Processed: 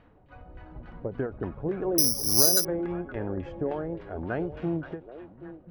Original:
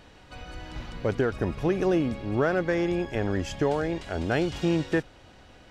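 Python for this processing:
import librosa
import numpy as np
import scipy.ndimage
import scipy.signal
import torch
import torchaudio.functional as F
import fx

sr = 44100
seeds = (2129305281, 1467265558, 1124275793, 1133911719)

y = fx.spec_quant(x, sr, step_db=15)
y = fx.filter_lfo_lowpass(y, sr, shape='saw_down', hz=3.5, low_hz=490.0, high_hz=1900.0, q=1.0)
y = fx.echo_stepped(y, sr, ms=259, hz=3200.0, octaves=-1.4, feedback_pct=70, wet_db=-4.5)
y = fx.resample_bad(y, sr, factor=8, down='filtered', up='zero_stuff', at=(1.98, 2.65))
y = fx.end_taper(y, sr, db_per_s=190.0)
y = F.gain(torch.from_numpy(y), -5.0).numpy()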